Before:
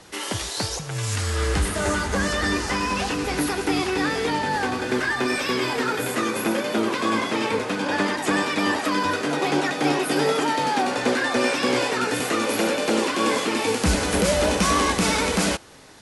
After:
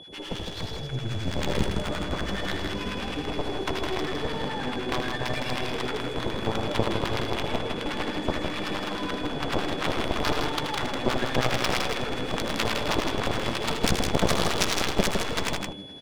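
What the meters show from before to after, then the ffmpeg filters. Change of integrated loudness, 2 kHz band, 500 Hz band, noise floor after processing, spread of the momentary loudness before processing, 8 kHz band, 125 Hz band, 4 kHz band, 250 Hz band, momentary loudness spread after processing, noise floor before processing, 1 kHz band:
-5.5 dB, -7.0 dB, -5.5 dB, -35 dBFS, 4 LU, -8.5 dB, -2.0 dB, -2.5 dB, -6.5 dB, 6 LU, -31 dBFS, -6.5 dB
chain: -filter_complex "[0:a]highpass=f=56:w=0.5412,highpass=f=56:w=1.3066,equalizer=f=1200:w=1.4:g=-12,bandreject=f=2000:w=12,bandreject=f=98.42:t=h:w=4,bandreject=f=196.84:t=h:w=4,bandreject=f=295.26:t=h:w=4,bandreject=f=393.68:t=h:w=4,bandreject=f=492.1:t=h:w=4,bandreject=f=590.52:t=h:w=4,bandreject=f=688.94:t=h:w=4,bandreject=f=787.36:t=h:w=4,bandreject=f=885.78:t=h:w=4,bandreject=f=984.2:t=h:w=4,bandreject=f=1082.62:t=h:w=4,bandreject=f=1181.04:t=h:w=4,bandreject=f=1279.46:t=h:w=4,bandreject=f=1377.88:t=h:w=4,bandreject=f=1476.3:t=h:w=4,bandreject=f=1574.72:t=h:w=4,bandreject=f=1673.14:t=h:w=4,bandreject=f=1771.56:t=h:w=4,bandreject=f=1869.98:t=h:w=4,bandreject=f=1968.4:t=h:w=4,bandreject=f=2066.82:t=h:w=4,bandreject=f=2165.24:t=h:w=4,bandreject=f=2263.66:t=h:w=4,bandreject=f=2362.08:t=h:w=4,bandreject=f=2460.5:t=h:w=4,bandreject=f=2558.92:t=h:w=4,bandreject=f=2657.34:t=h:w=4,bandreject=f=2755.76:t=h:w=4,bandreject=f=2854.18:t=h:w=4,bandreject=f=2952.6:t=h:w=4,bandreject=f=3051.02:t=h:w=4,bandreject=f=3149.44:t=h:w=4,bandreject=f=3247.86:t=h:w=4,bandreject=f=3346.28:t=h:w=4,bandreject=f=3444.7:t=h:w=4,bandreject=f=3543.12:t=h:w=4,areverse,acompressor=mode=upward:threshold=0.00891:ratio=2.5,areverse,aeval=exprs='0.335*(cos(1*acos(clip(val(0)/0.335,-1,1)))-cos(1*PI/2))+0.106*(cos(4*acos(clip(val(0)/0.335,-1,1)))-cos(4*PI/2))+0.119*(cos(7*acos(clip(val(0)/0.335,-1,1)))-cos(7*PI/2))':c=same,acrossover=split=910[s0][s1];[s0]aeval=exprs='val(0)*(1-1/2+1/2*cos(2*PI*9.4*n/s))':c=same[s2];[s1]aeval=exprs='val(0)*(1-1/2-1/2*cos(2*PI*9.4*n/s))':c=same[s3];[s2][s3]amix=inputs=2:normalize=0,aeval=exprs='val(0)+0.02*sin(2*PI*3400*n/s)':c=same,adynamicsmooth=sensitivity=2:basefreq=1500,aecho=1:1:78.72|160.3:0.398|0.562,volume=1.19"

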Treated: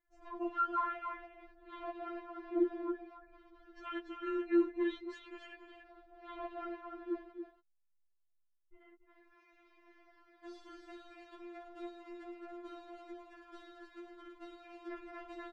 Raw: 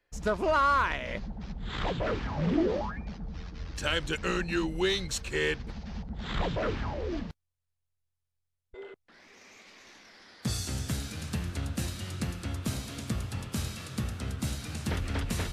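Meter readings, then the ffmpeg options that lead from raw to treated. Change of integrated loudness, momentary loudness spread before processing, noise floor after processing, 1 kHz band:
-8.0 dB, 14 LU, -76 dBFS, -9.0 dB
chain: -filter_complex "[0:a]lowpass=1500,asplit=2[s0][s1];[s1]aecho=0:1:281:0.422[s2];[s0][s2]amix=inputs=2:normalize=0,afftfilt=real='re*4*eq(mod(b,16),0)':imag='im*4*eq(mod(b,16),0)':win_size=2048:overlap=0.75,volume=0.501"

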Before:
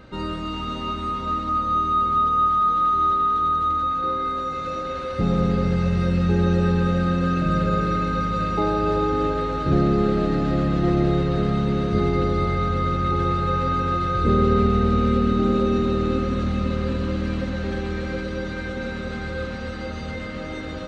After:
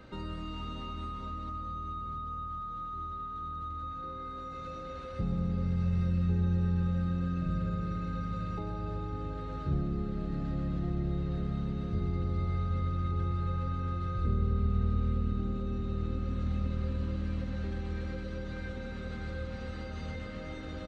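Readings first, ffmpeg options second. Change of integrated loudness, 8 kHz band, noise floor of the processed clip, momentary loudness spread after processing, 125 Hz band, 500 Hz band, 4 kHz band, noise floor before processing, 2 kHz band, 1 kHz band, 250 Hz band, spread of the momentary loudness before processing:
-12.0 dB, no reading, -41 dBFS, 10 LU, -8.0 dB, -18.5 dB, -15.5 dB, -31 dBFS, -15.5 dB, -18.5 dB, -13.0 dB, 10 LU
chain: -filter_complex "[0:a]acrossover=split=150[s0][s1];[s1]acompressor=threshold=0.0178:ratio=5[s2];[s0][s2]amix=inputs=2:normalize=0,aecho=1:1:126:0.251,volume=0.501"

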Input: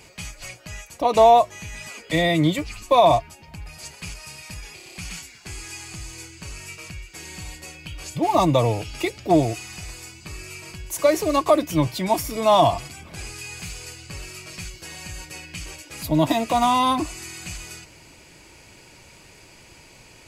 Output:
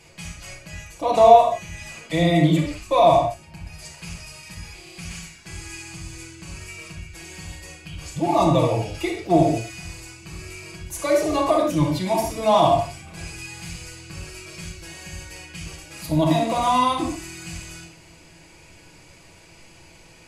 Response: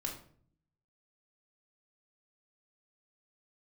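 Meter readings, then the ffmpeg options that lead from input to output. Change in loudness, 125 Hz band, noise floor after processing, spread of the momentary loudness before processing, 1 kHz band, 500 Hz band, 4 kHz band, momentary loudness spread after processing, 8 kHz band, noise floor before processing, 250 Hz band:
+1.0 dB, +2.5 dB, -49 dBFS, 20 LU, +0.5 dB, +1.0 dB, -2.0 dB, 21 LU, -2.0 dB, -49 dBFS, +1.0 dB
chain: -filter_complex "[1:a]atrim=start_sample=2205,afade=t=out:st=0.14:d=0.01,atrim=end_sample=6615,asetrate=24255,aresample=44100[s0];[0:a][s0]afir=irnorm=-1:irlink=0,volume=0.531"

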